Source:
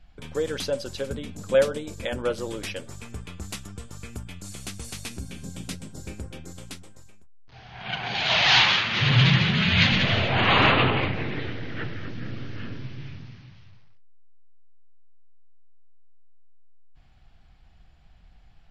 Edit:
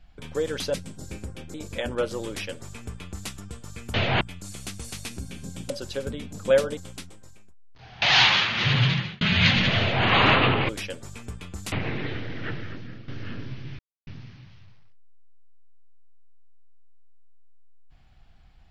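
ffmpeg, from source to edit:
ffmpeg -i in.wav -filter_complex "[0:a]asplit=13[link_01][link_02][link_03][link_04][link_05][link_06][link_07][link_08][link_09][link_10][link_11][link_12][link_13];[link_01]atrim=end=0.742[link_14];[link_02]atrim=start=5.698:end=6.502[link_15];[link_03]atrim=start=1.808:end=4.212[link_16];[link_04]atrim=start=10.148:end=10.422[link_17];[link_05]atrim=start=4.208:end=5.702[link_18];[link_06]atrim=start=0.738:end=1.812[link_19];[link_07]atrim=start=6.498:end=7.752[link_20];[link_08]atrim=start=8.378:end=9.57,asetpts=PTS-STARTPTS,afade=type=out:start_time=0.652:duration=0.54[link_21];[link_09]atrim=start=9.57:end=11.052,asetpts=PTS-STARTPTS,afade=type=in:duration=0.004:curve=hsin[link_22];[link_10]atrim=start=2.548:end=3.582[link_23];[link_11]atrim=start=11.048:end=12.41,asetpts=PTS-STARTPTS,afade=type=out:start_time=0.872:duration=0.49:silence=0.237137[link_24];[link_12]atrim=start=12.41:end=13.12,asetpts=PTS-STARTPTS,afade=type=in:duration=0.004:curve=hsin:silence=0.237137,afade=type=out:start_time=0.706:duration=0.004:curve=hsin,apad=pad_dur=0.28[link_25];[link_13]atrim=start=13.12,asetpts=PTS-STARTPTS,afade=type=in:duration=0.004:curve=hsin[link_26];[link_14][link_15]acrossfade=duration=0.004:curve1=hsin:curve2=hsin[link_27];[link_27][link_16]acrossfade=duration=0.004:curve1=hsin:curve2=hsin[link_28];[link_28][link_17]acrossfade=duration=0.004:curve1=hsin:curve2=hsin[link_29];[link_29][link_18]acrossfade=duration=0.004:curve1=hsin:curve2=hsin[link_30];[link_30][link_19]acrossfade=duration=0.004:curve1=hsin:curve2=hsin[link_31];[link_31][link_20]acrossfade=duration=0.004:curve1=hsin:curve2=hsin[link_32];[link_21][link_22]concat=n=2:v=0:a=1[link_33];[link_32][link_33]acrossfade=duration=0.004:curve1=hsin:curve2=hsin[link_34];[link_34][link_23]acrossfade=duration=0.004:curve1=hsin:curve2=hsin[link_35];[link_24][link_25][link_26]concat=n=3:v=0:a=1[link_36];[link_35][link_36]acrossfade=duration=0.004:curve1=hsin:curve2=hsin" out.wav

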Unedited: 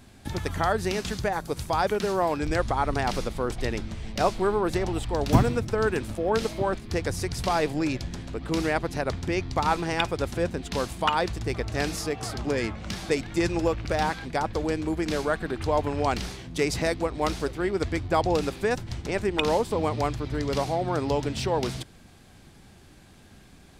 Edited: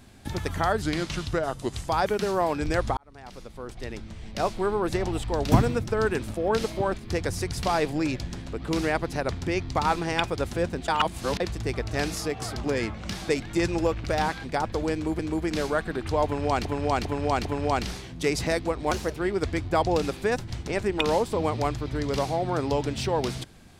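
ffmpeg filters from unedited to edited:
ffmpeg -i in.wav -filter_complex "[0:a]asplit=12[link_01][link_02][link_03][link_04][link_05][link_06][link_07][link_08][link_09][link_10][link_11][link_12];[link_01]atrim=end=0.824[link_13];[link_02]atrim=start=0.82:end=1.69,asetpts=PTS-STARTPTS,asetrate=36162,aresample=44100,atrim=end_sample=46789,asetpts=PTS-STARTPTS[link_14];[link_03]atrim=start=1.686:end=2.78,asetpts=PTS-STARTPTS,afade=type=out:start_time=1.09:duration=0.004:curve=hsin[link_15];[link_04]atrim=start=2.78:end=10.692,asetpts=PTS-STARTPTS,afade=type=in:duration=2.08[link_16];[link_05]atrim=start=10.688:end=11.212,asetpts=PTS-STARTPTS,areverse[link_17];[link_06]atrim=start=11.208:end=15.002[link_18];[link_07]atrim=start=14.738:end=16.202[link_19];[link_08]atrim=start=15.798:end=16.202[link_20];[link_09]atrim=start=15.798:end=16.202[link_21];[link_10]atrim=start=15.798:end=17.264[link_22];[link_11]atrim=start=17.26:end=17.56,asetpts=PTS-STARTPTS,asetrate=51156,aresample=44100,atrim=end_sample=11405,asetpts=PTS-STARTPTS[link_23];[link_12]atrim=start=17.556[link_24];[link_13][link_14]acrossfade=duration=0.004:curve1=hsin:curve2=hsin[link_25];[link_15][link_16]concat=n=2:v=0:a=1[link_26];[link_25][link_26]acrossfade=duration=0.004:curve1=hsin:curve2=hsin[link_27];[link_27][link_17]acrossfade=duration=0.004:curve1=hsin:curve2=hsin[link_28];[link_28][link_18]acrossfade=duration=0.004:curve1=hsin:curve2=hsin[link_29];[link_29][link_19]acrossfade=duration=0.004:curve1=hsin:curve2=hsin[link_30];[link_30][link_20]acrossfade=duration=0.004:curve1=hsin:curve2=hsin[link_31];[link_31][link_21]acrossfade=duration=0.004:curve1=hsin:curve2=hsin[link_32];[link_32][link_22]acrossfade=duration=0.004:curve1=hsin:curve2=hsin[link_33];[link_33][link_23]acrossfade=duration=0.004:curve1=hsin:curve2=hsin[link_34];[link_34][link_24]acrossfade=duration=0.004:curve1=hsin:curve2=hsin" out.wav

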